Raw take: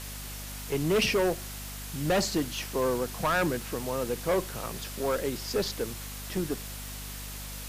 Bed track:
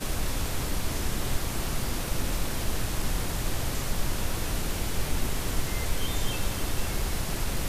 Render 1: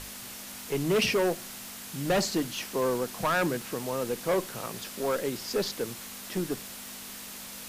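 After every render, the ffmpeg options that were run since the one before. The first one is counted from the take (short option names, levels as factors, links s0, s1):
-af "bandreject=f=50:t=h:w=6,bandreject=f=100:t=h:w=6,bandreject=f=150:t=h:w=6"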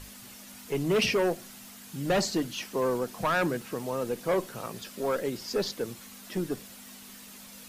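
-af "afftdn=nr=8:nf=-43"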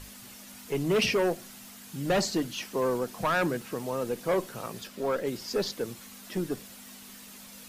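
-filter_complex "[0:a]asettb=1/sr,asplit=3[s0][s1][s2];[s0]atrim=end=4.874[s3];[s1]atrim=start=4.87:end=5.27,asetpts=PTS-STARTPTS,afade=t=in:d=0.004:c=qsin,afade=t=out:st=0.396:d=0.004:c=qsin,equalizer=f=11000:t=o:w=1.7:g=-6[s4];[s2]atrim=start=5.266[s5];[s3][s4]acrossfade=d=0.004:c1=hsin:c2=qsin[s6];[s6][s5]acrossfade=d=0.004:c1=qsin:c2=hsin"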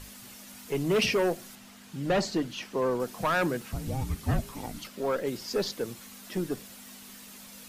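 -filter_complex "[0:a]asettb=1/sr,asplit=3[s0][s1][s2];[s0]atrim=end=1.554[s3];[s1]atrim=start=1.55:end=3,asetpts=PTS-STARTPTS,afade=t=in:d=0.004:c=qsin,afade=t=out:st=1.446:d=0.004:c=qsin,highshelf=f=6900:g=-11.5[s4];[s2]atrim=start=2.996[s5];[s3][s4]acrossfade=d=0.004:c1=hsin:c2=qsin[s6];[s6][s5]acrossfade=d=0.004:c1=qsin:c2=hsin,asettb=1/sr,asplit=3[s7][s8][s9];[s7]atrim=end=3.724[s10];[s8]atrim=start=3.72:end=4.87,asetpts=PTS-STARTPTS,afade=t=in:d=0.004:c=qsin,afade=t=out:st=1.146:d=0.004:c=qsin,afreqshift=-410[s11];[s9]atrim=start=4.866[s12];[s10][s11]acrossfade=d=0.004:c1=hsin:c2=qsin[s13];[s13][s12]acrossfade=d=0.004:c1=qsin:c2=hsin"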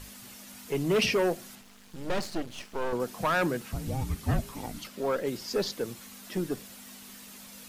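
-filter_complex "[0:a]asettb=1/sr,asplit=3[s0][s1][s2];[s0]atrim=end=1.614[s3];[s1]atrim=start=1.61:end=2.93,asetpts=PTS-STARTPTS,afade=t=in:d=0.004:c=qsin,afade=t=out:st=1.316:d=0.004:c=qsin,aeval=exprs='max(val(0),0)':c=same[s4];[s2]atrim=start=2.926[s5];[s3][s4]acrossfade=d=0.004:c1=hsin:c2=qsin[s6];[s6][s5]acrossfade=d=0.004:c1=qsin:c2=hsin"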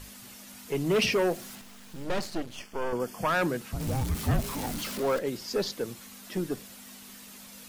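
-filter_complex "[0:a]asettb=1/sr,asplit=3[s0][s1][s2];[s0]atrim=end=0.864[s3];[s1]atrim=start=0.86:end=2.04,asetpts=PTS-STARTPTS,afade=t=in:d=0.004:c=qsin,afade=t=out:st=1.176:d=0.004:c=qsin,aeval=exprs='val(0)+0.5*0.00501*sgn(val(0))':c=same[s4];[s2]atrim=start=2.036[s5];[s3][s4]acrossfade=d=0.004:c1=hsin:c2=qsin[s6];[s6][s5]acrossfade=d=0.004:c1=qsin:c2=hsin,asettb=1/sr,asplit=3[s7][s8][s9];[s7]atrim=end=2.564[s10];[s8]atrim=start=2.56:end=3.28,asetpts=PTS-STARTPTS,afade=t=in:d=0.004:c=qsin,afade=t=out:st=0.716:d=0.004:c=qsin,asuperstop=centerf=3900:order=8:qfactor=5.4[s11];[s9]atrim=start=3.276[s12];[s10][s11]acrossfade=d=0.004:c1=hsin:c2=qsin[s13];[s13][s12]acrossfade=d=0.004:c1=qsin:c2=hsin,asettb=1/sr,asplit=3[s14][s15][s16];[s14]atrim=end=3.804[s17];[s15]atrim=start=3.8:end=5.19,asetpts=PTS-STARTPTS,afade=t=in:d=0.004:c=qsin,afade=t=out:st=1.386:d=0.004:c=qsin,aeval=exprs='val(0)+0.5*0.0237*sgn(val(0))':c=same[s18];[s16]atrim=start=5.186[s19];[s17][s18]acrossfade=d=0.004:c1=hsin:c2=qsin[s20];[s20][s19]acrossfade=d=0.004:c1=qsin:c2=hsin"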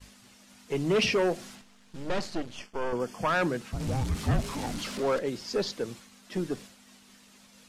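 -af "agate=range=0.0224:threshold=0.00891:ratio=3:detection=peak,lowpass=7800"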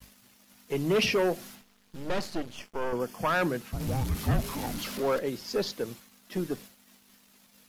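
-af "aexciter=amount=3.7:drive=6.9:freq=11000,aeval=exprs='sgn(val(0))*max(abs(val(0))-0.00112,0)':c=same"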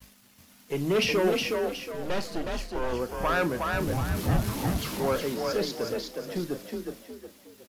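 -filter_complex "[0:a]asplit=2[s0][s1];[s1]adelay=35,volume=0.224[s2];[s0][s2]amix=inputs=2:normalize=0,asplit=6[s3][s4][s5][s6][s7][s8];[s4]adelay=365,afreqshift=33,volume=0.668[s9];[s5]adelay=730,afreqshift=66,volume=0.248[s10];[s6]adelay=1095,afreqshift=99,volume=0.0912[s11];[s7]adelay=1460,afreqshift=132,volume=0.0339[s12];[s8]adelay=1825,afreqshift=165,volume=0.0126[s13];[s3][s9][s10][s11][s12][s13]amix=inputs=6:normalize=0"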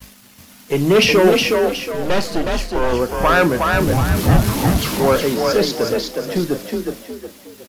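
-af "volume=3.98"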